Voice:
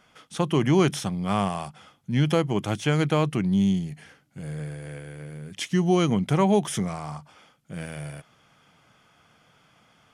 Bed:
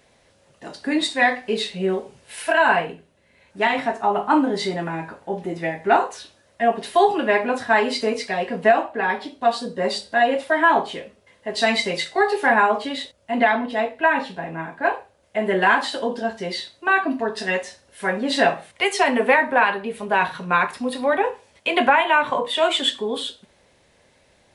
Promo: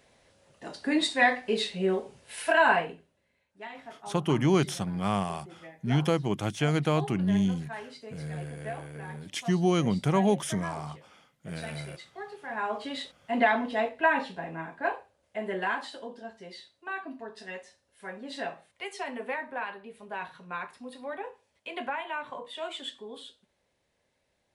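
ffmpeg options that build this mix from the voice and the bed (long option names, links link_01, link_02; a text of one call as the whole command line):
ffmpeg -i stem1.wav -i stem2.wav -filter_complex "[0:a]adelay=3750,volume=-3.5dB[link_01];[1:a]volume=12.5dB,afade=type=out:start_time=2.64:duration=0.83:silence=0.125893,afade=type=in:start_time=12.48:duration=0.63:silence=0.141254,afade=type=out:start_time=14.04:duration=2.09:silence=0.251189[link_02];[link_01][link_02]amix=inputs=2:normalize=0" out.wav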